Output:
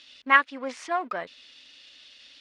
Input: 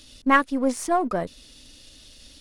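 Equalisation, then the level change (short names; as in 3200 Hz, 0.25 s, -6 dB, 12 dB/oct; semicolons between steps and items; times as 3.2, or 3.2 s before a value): band-pass 2400 Hz, Q 1.1; air absorption 88 m; +5.5 dB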